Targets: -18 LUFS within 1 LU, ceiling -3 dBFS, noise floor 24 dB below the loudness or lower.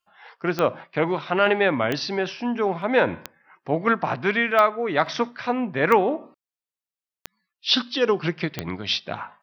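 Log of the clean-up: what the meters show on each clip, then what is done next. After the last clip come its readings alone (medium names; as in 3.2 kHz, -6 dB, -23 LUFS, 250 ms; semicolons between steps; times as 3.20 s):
clicks found 7; loudness -23.0 LUFS; peak level -3.5 dBFS; loudness target -18.0 LUFS
-> de-click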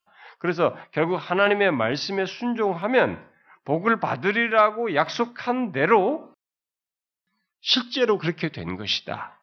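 clicks found 0; loudness -23.0 LUFS; peak level -5.5 dBFS; loudness target -18.0 LUFS
-> trim +5 dB; peak limiter -3 dBFS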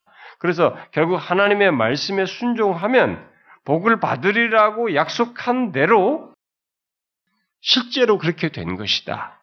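loudness -18.5 LUFS; peak level -3.0 dBFS; noise floor -86 dBFS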